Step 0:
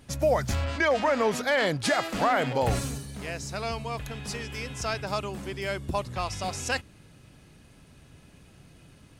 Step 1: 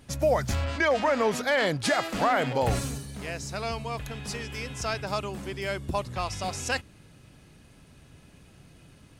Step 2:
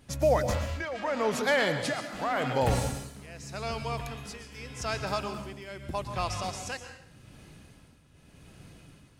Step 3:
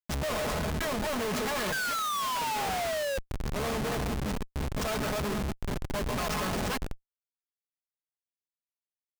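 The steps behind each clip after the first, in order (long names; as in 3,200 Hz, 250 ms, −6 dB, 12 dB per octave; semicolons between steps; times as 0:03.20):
no processing that can be heard
reversed playback; upward compression, threshold −44 dBFS; reversed playback; shaped tremolo triangle 0.84 Hz, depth 80%; dense smooth reverb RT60 0.67 s, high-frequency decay 0.9×, pre-delay 105 ms, DRR 7.5 dB
lower of the sound and its delayed copy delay 4.7 ms; sound drawn into the spectrogram fall, 0:01.72–0:03.18, 530–1,600 Hz −25 dBFS; comparator with hysteresis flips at −37.5 dBFS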